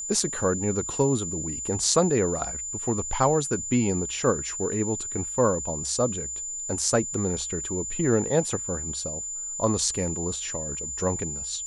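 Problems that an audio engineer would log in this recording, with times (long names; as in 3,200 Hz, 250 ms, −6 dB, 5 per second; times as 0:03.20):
whistle 7,100 Hz −31 dBFS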